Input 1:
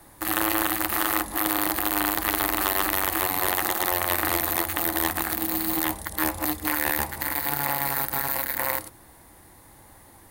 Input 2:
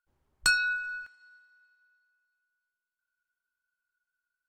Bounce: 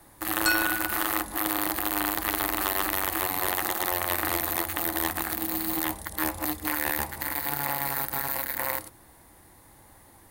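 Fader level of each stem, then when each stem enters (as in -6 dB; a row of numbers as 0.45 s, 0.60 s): -3.0 dB, -1.0 dB; 0.00 s, 0.00 s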